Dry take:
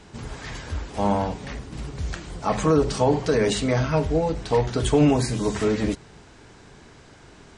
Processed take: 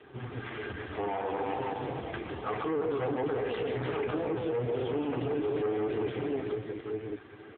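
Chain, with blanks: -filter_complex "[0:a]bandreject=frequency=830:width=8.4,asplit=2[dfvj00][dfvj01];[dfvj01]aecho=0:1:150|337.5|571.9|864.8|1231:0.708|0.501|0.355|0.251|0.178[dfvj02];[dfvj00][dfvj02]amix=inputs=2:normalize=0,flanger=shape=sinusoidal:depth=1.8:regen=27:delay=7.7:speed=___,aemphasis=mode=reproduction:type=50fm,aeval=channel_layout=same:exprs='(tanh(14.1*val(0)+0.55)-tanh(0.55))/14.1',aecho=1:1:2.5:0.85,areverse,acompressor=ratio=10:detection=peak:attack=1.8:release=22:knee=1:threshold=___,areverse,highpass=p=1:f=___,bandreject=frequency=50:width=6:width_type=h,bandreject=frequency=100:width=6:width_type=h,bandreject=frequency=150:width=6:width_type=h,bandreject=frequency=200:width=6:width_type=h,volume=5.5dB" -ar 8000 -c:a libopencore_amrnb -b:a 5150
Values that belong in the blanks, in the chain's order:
0.62, -31dB, 76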